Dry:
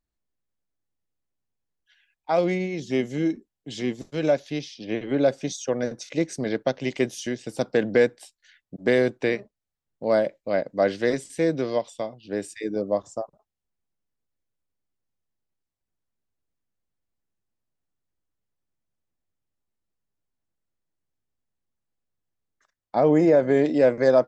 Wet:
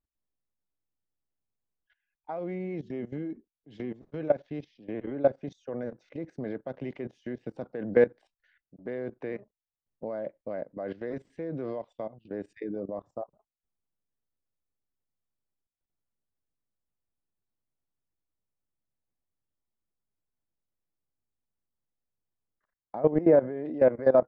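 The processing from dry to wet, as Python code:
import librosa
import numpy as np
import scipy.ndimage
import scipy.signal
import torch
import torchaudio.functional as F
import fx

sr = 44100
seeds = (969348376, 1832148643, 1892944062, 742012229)

y = scipy.signal.sosfilt(scipy.signal.butter(2, 1500.0, 'lowpass', fs=sr, output='sos'), x)
y = fx.level_steps(y, sr, step_db=17)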